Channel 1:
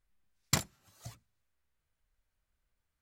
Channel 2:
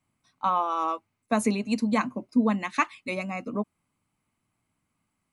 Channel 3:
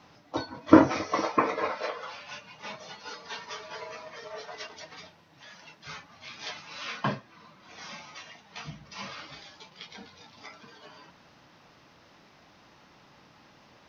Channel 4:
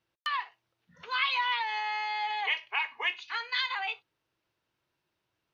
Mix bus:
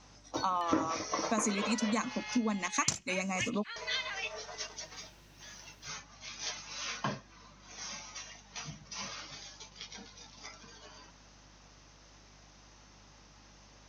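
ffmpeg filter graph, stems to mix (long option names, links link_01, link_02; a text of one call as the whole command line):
ffmpeg -i stem1.wav -i stem2.wav -i stem3.wav -i stem4.wav -filter_complex "[0:a]adelay=2350,volume=2.5dB[link_01];[1:a]highshelf=frequency=9100:gain=9.5,volume=-1.5dB,asplit=2[link_02][link_03];[2:a]aeval=exprs='val(0)+0.00158*(sin(2*PI*50*n/s)+sin(2*PI*2*50*n/s)/2+sin(2*PI*3*50*n/s)/3+sin(2*PI*4*50*n/s)/4+sin(2*PI*5*50*n/s)/5)':channel_layout=same,volume=-4.5dB,asplit=3[link_04][link_05][link_06];[link_04]atrim=end=2.68,asetpts=PTS-STARTPTS,afade=type=out:start_time=2.676:duration=0.004:curve=hsin[link_07];[link_05]atrim=start=2.68:end=3.76,asetpts=PTS-STARTPTS,volume=0[link_08];[link_06]atrim=start=3.76,asetpts=PTS-STARTPTS,afade=type=in:duration=0.004:curve=hsin[link_09];[link_07][link_08][link_09]concat=n=3:v=0:a=1[link_10];[3:a]equalizer=frequency=820:width=1:gain=-10,acompressor=mode=upward:threshold=-42dB:ratio=2.5,adelay=350,volume=-2.5dB[link_11];[link_03]apad=whole_len=259418[link_12];[link_11][link_12]sidechaincompress=threshold=-31dB:ratio=8:attack=16:release=558[link_13];[link_01][link_02][link_10]amix=inputs=3:normalize=0,lowpass=frequency=6400:width_type=q:width=6.3,acompressor=threshold=-30dB:ratio=3,volume=0dB[link_14];[link_13][link_14]amix=inputs=2:normalize=0" out.wav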